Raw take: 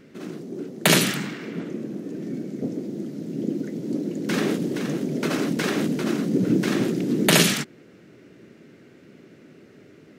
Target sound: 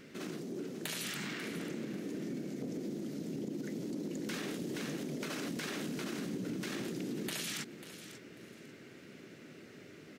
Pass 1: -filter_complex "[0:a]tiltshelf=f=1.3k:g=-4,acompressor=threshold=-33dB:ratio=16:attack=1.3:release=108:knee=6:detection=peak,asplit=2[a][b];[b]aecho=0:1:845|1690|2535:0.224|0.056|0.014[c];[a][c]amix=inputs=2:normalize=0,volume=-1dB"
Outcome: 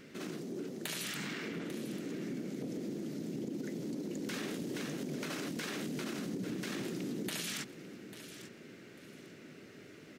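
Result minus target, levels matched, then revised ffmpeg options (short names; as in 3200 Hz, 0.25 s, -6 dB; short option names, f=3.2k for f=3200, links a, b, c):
echo 0.302 s late
-filter_complex "[0:a]tiltshelf=f=1.3k:g=-4,acompressor=threshold=-33dB:ratio=16:attack=1.3:release=108:knee=6:detection=peak,asplit=2[a][b];[b]aecho=0:1:543|1086|1629:0.224|0.056|0.014[c];[a][c]amix=inputs=2:normalize=0,volume=-1dB"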